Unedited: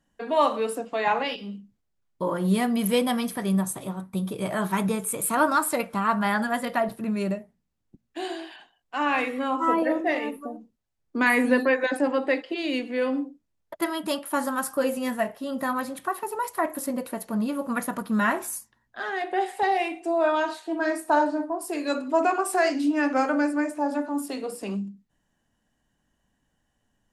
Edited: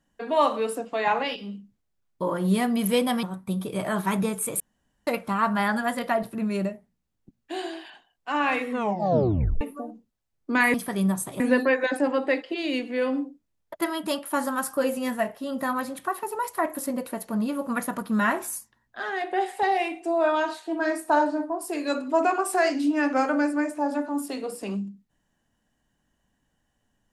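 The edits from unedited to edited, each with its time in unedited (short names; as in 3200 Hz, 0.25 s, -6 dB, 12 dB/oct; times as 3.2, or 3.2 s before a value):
3.23–3.89 move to 11.4
5.26–5.73 room tone
9.34 tape stop 0.93 s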